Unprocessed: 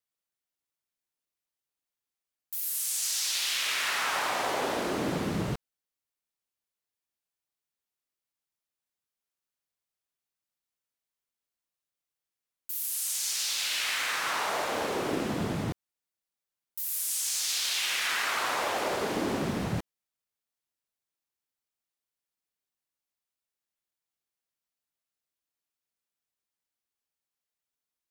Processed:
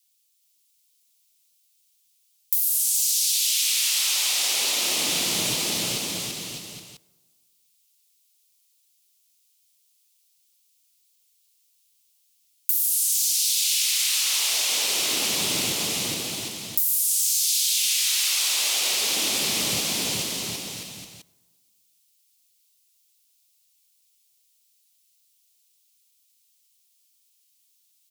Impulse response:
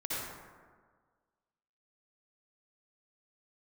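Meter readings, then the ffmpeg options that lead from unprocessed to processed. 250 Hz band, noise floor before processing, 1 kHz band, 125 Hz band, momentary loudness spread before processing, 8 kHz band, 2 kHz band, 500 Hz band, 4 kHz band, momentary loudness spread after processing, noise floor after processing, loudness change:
−2.0 dB, below −85 dBFS, −5.5 dB, −3.0 dB, 8 LU, +11.5 dB, +1.5 dB, −3.5 dB, +10.0 dB, 10 LU, −66 dBFS, +8.0 dB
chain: -filter_complex "[0:a]aecho=1:1:420|756|1025|1240|1412:0.631|0.398|0.251|0.158|0.1,aexciter=amount=7.5:drive=6.9:freq=2400,highpass=frequency=120:poles=1,acompressor=threshold=-21dB:ratio=6,asplit=2[link_01][link_02];[1:a]atrim=start_sample=2205,adelay=16[link_03];[link_02][link_03]afir=irnorm=-1:irlink=0,volume=-26dB[link_04];[link_01][link_04]amix=inputs=2:normalize=0"

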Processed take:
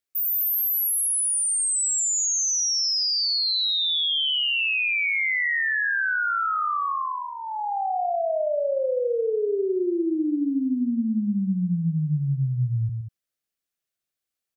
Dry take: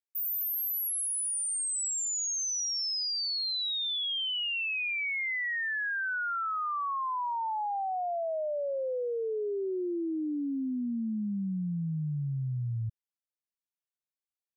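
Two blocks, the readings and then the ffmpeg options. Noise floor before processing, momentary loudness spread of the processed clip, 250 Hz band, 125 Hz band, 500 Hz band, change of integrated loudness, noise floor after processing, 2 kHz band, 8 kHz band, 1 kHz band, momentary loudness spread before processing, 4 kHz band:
below −85 dBFS, 6 LU, +8.5 dB, +8.5 dB, +8.0 dB, +8.0 dB, below −85 dBFS, +8.0 dB, +8.5 dB, +5.5 dB, 4 LU, +8.5 dB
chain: -filter_complex "[0:a]equalizer=frequency=940:width=7.1:gain=-13,asplit=2[link_01][link_02];[link_02]aecho=0:1:119.5|189.5:0.316|0.316[link_03];[link_01][link_03]amix=inputs=2:normalize=0,volume=7.5dB"

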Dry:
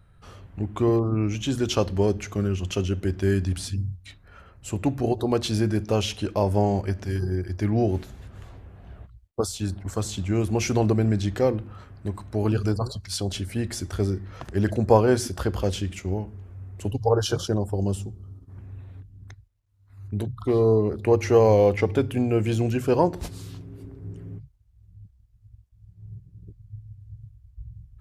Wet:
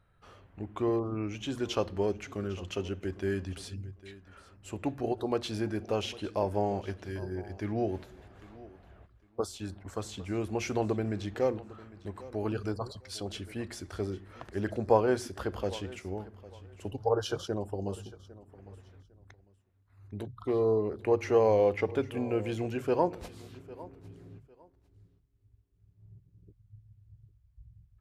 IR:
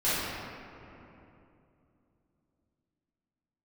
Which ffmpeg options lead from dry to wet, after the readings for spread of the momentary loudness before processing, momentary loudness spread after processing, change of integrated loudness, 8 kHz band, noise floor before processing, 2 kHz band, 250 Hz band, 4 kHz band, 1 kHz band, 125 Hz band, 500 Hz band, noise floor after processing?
22 LU, 21 LU, −8.0 dB, −11.5 dB, −57 dBFS, −6.0 dB, −9.0 dB, −8.5 dB, −5.5 dB, −13.0 dB, −6.5 dB, −67 dBFS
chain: -af "bass=frequency=250:gain=-8,treble=frequency=4000:gain=-7,aecho=1:1:803|1606:0.112|0.0258,volume=-5.5dB"

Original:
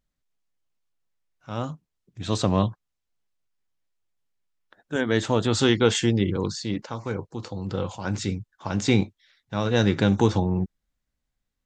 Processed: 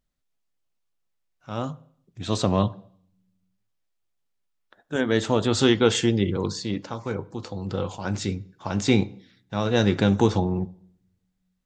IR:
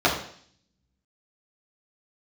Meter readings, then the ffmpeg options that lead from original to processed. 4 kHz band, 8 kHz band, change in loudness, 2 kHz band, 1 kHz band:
+0.5 dB, 0.0 dB, +0.5 dB, −0.5 dB, +0.5 dB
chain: -filter_complex "[0:a]asplit=2[link_01][link_02];[1:a]atrim=start_sample=2205,asetrate=42777,aresample=44100[link_03];[link_02][link_03]afir=irnorm=-1:irlink=0,volume=-32.5dB[link_04];[link_01][link_04]amix=inputs=2:normalize=0"

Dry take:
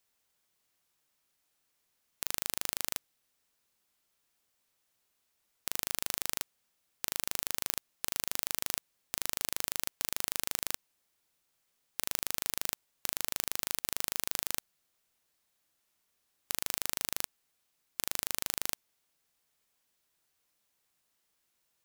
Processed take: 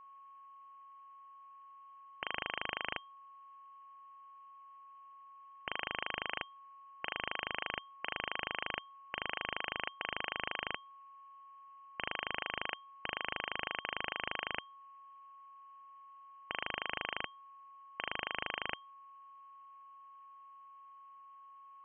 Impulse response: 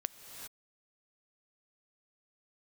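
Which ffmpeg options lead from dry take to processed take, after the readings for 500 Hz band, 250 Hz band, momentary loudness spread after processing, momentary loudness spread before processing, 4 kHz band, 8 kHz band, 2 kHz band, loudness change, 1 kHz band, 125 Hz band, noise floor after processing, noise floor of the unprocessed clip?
+2.5 dB, −1.5 dB, 18 LU, 6 LU, −2.5 dB, below −40 dB, +5.0 dB, −5.5 dB, +6.0 dB, −3.5 dB, −56 dBFS, −78 dBFS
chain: -af "lowpass=frequency=2700:width_type=q:width=0.5098,lowpass=frequency=2700:width_type=q:width=0.6013,lowpass=frequency=2700:width_type=q:width=0.9,lowpass=frequency=2700:width_type=q:width=2.563,afreqshift=-3200,aeval=exprs='val(0)+0.00126*sin(2*PI*1100*n/s)':channel_layout=same,volume=5dB"

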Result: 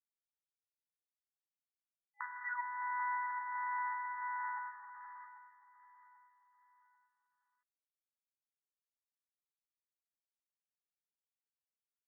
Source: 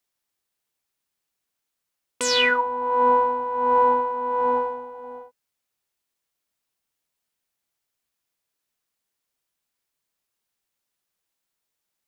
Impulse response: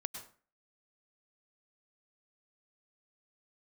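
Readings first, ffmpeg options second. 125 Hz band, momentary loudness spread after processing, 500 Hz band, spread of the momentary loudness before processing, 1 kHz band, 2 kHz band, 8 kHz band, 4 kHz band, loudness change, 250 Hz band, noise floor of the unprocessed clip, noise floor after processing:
can't be measured, 15 LU, below −40 dB, 16 LU, −17.0 dB, −13.5 dB, below −40 dB, below −40 dB, −18.5 dB, below −40 dB, −82 dBFS, below −85 dBFS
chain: -af "volume=13dB,asoftclip=hard,volume=-13dB,agate=range=-7dB:threshold=-27dB:ratio=16:detection=peak,acompressor=threshold=-34dB:ratio=4,acrusher=bits=5:dc=4:mix=0:aa=0.000001,afftfilt=real='re*between(b*sr/4096,820,2000)':imag='im*between(b*sr/4096,820,2000)':win_size=4096:overlap=0.75,aecho=1:1:790|1580|2370:0.188|0.0659|0.0231,volume=2dB"

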